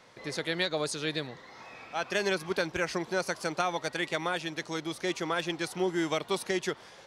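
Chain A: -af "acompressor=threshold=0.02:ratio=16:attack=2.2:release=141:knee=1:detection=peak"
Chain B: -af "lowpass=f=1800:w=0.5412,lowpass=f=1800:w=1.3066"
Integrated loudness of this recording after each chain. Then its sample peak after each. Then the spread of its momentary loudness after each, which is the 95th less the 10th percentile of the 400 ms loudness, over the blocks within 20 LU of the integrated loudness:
-40.5 LUFS, -33.5 LUFS; -22.0 dBFS, -15.5 dBFS; 4 LU, 8 LU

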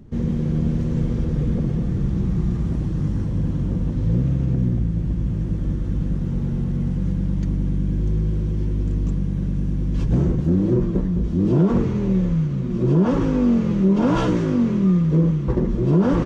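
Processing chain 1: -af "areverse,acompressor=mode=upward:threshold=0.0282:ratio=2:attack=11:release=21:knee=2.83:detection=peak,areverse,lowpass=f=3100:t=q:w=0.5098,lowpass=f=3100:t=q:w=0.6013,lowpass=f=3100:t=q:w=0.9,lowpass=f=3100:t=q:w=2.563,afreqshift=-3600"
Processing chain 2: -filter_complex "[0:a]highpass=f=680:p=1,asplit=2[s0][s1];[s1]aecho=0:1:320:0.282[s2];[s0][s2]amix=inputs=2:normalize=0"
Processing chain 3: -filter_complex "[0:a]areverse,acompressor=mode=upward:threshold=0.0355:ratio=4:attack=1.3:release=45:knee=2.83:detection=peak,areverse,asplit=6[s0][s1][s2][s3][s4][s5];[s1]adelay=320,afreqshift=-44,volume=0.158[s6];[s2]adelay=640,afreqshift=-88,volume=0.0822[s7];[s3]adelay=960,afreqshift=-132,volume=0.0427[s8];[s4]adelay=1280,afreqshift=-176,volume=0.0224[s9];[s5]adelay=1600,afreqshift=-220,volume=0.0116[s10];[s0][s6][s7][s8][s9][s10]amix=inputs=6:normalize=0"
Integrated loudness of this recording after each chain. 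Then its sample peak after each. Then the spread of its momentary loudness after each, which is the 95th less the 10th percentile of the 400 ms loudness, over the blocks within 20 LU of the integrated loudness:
-16.5 LUFS, -32.0 LUFS, -21.5 LUFS; -6.5 dBFS, -14.0 dBFS, -7.5 dBFS; 5 LU, 11 LU, 6 LU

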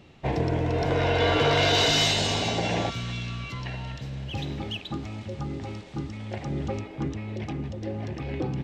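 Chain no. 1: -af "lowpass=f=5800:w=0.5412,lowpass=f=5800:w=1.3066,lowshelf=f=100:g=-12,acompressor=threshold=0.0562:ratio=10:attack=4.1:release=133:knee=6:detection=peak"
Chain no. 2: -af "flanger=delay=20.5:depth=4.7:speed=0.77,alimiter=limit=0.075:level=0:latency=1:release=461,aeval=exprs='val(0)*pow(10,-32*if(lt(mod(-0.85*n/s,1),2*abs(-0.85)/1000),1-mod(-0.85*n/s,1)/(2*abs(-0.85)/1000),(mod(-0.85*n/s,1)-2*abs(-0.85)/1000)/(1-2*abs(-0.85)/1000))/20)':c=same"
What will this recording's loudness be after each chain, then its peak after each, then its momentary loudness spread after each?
-32.5 LUFS, -42.5 LUFS; -18.0 dBFS, -23.0 dBFS; 11 LU, 20 LU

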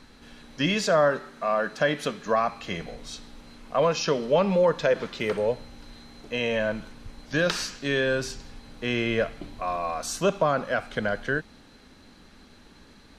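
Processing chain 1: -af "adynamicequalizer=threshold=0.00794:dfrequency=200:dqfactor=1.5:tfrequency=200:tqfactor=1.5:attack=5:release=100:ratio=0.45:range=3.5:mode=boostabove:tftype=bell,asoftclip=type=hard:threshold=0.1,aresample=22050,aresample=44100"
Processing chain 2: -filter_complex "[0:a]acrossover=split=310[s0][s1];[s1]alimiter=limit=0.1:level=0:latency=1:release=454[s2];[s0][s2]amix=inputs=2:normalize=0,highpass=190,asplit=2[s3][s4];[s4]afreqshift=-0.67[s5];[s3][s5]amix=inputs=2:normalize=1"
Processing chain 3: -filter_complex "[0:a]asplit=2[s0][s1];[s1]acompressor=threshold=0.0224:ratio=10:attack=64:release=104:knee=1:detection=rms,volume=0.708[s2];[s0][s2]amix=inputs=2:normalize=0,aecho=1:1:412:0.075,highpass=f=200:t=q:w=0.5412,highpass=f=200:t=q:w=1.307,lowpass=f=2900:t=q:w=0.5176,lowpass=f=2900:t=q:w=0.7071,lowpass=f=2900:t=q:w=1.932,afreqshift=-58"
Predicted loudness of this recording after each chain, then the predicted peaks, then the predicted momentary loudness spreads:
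-27.0 LUFS, -33.5 LUFS, -25.0 LUFS; -18.0 dBFS, -18.0 dBFS, -9.5 dBFS; 17 LU, 18 LU, 17 LU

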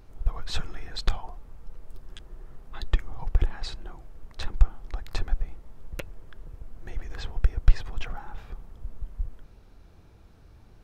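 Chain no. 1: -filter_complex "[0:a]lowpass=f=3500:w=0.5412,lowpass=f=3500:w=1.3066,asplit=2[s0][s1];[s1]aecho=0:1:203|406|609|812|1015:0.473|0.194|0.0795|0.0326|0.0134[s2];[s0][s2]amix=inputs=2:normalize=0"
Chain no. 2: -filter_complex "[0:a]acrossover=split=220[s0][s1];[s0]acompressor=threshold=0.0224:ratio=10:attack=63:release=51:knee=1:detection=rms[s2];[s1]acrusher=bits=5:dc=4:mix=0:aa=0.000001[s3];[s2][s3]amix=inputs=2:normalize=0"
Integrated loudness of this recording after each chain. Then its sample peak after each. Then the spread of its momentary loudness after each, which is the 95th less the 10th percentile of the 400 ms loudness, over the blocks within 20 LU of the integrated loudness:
-33.5 LUFS, -43.0 LUFS; -3.5 dBFS, -13.5 dBFS; 20 LU, 17 LU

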